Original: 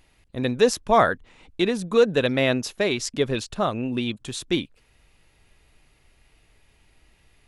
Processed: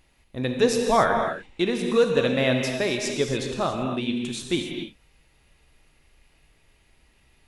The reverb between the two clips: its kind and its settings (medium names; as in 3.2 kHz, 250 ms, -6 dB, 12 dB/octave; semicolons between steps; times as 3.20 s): gated-style reverb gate 310 ms flat, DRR 2.5 dB; trim -2.5 dB